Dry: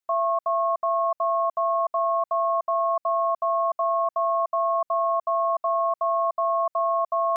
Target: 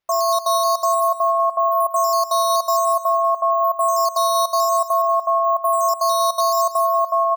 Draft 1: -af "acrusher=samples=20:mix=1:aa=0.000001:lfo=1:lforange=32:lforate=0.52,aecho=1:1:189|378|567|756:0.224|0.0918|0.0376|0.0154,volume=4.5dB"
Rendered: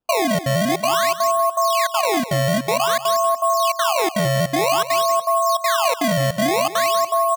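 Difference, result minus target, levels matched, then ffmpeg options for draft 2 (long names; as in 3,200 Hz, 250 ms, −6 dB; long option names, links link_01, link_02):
sample-and-hold swept by an LFO: distortion +16 dB
-af "acrusher=samples=5:mix=1:aa=0.000001:lfo=1:lforange=8:lforate=0.52,aecho=1:1:189|378|567|756:0.224|0.0918|0.0376|0.0154,volume=4.5dB"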